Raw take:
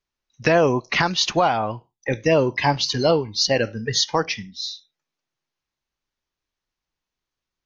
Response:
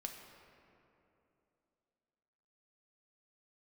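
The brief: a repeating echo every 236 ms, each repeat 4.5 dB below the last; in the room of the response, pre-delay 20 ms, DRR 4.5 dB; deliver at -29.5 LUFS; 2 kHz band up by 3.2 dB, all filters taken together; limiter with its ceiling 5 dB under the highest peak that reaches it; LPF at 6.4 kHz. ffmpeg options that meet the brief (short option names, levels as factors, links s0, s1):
-filter_complex "[0:a]lowpass=6400,equalizer=f=2000:t=o:g=4,alimiter=limit=0.316:level=0:latency=1,aecho=1:1:236|472|708|944|1180|1416|1652|1888|2124:0.596|0.357|0.214|0.129|0.0772|0.0463|0.0278|0.0167|0.01,asplit=2[s0][s1];[1:a]atrim=start_sample=2205,adelay=20[s2];[s1][s2]afir=irnorm=-1:irlink=0,volume=0.794[s3];[s0][s3]amix=inputs=2:normalize=0,volume=0.299"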